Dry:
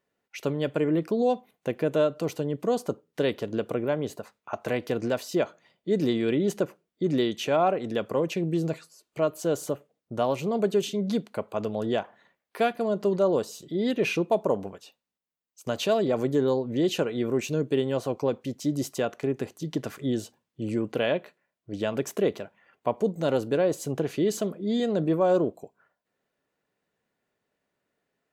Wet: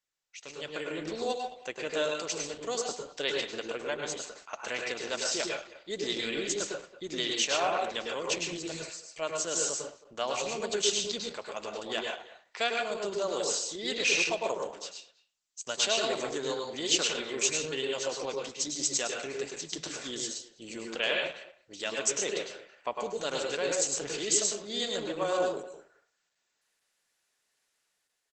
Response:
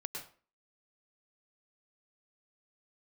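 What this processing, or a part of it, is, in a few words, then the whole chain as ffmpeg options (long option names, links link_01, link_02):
speakerphone in a meeting room: -filter_complex "[0:a]aderivative[link_01];[1:a]atrim=start_sample=2205[link_02];[link_01][link_02]afir=irnorm=-1:irlink=0,asplit=2[link_03][link_04];[link_04]adelay=220,highpass=300,lowpass=3400,asoftclip=type=hard:threshold=-35.5dB,volume=-16dB[link_05];[link_03][link_05]amix=inputs=2:normalize=0,dynaudnorm=framelen=270:gausssize=5:maxgain=15dB,volume=1dB" -ar 48000 -c:a libopus -b:a 12k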